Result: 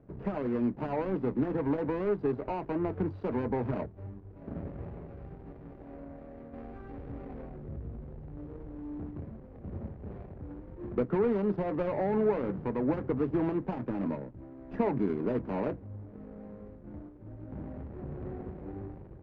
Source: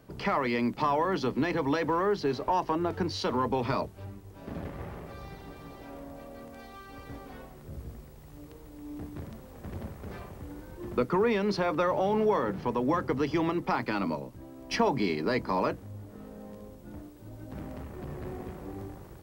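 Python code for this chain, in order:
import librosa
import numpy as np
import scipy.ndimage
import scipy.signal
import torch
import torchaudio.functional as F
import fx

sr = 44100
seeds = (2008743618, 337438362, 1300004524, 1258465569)

y = scipy.signal.medfilt(x, 41)
y = scipy.signal.sosfilt(scipy.signal.butter(2, 1600.0, 'lowpass', fs=sr, output='sos'), y)
y = fx.env_flatten(y, sr, amount_pct=50, at=(6.53, 9.11))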